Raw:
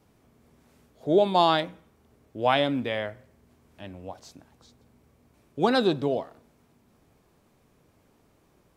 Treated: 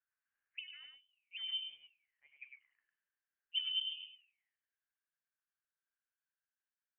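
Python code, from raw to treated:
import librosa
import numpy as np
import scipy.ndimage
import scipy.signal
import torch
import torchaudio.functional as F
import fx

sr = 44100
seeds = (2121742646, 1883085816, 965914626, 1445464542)

p1 = fx.speed_glide(x, sr, from_pct=192, to_pct=59)
p2 = p1 + fx.echo_single(p1, sr, ms=103, db=-4.5, dry=0)
p3 = fx.auto_wah(p2, sr, base_hz=220.0, top_hz=1800.0, q=11.0, full_db=-25.0, direction='down')
p4 = fx.low_shelf(p3, sr, hz=270.0, db=5.0)
p5 = fx.freq_invert(p4, sr, carrier_hz=3300)
p6 = fx.band_widen(p5, sr, depth_pct=40)
y = p6 * librosa.db_to_amplitude(-5.0)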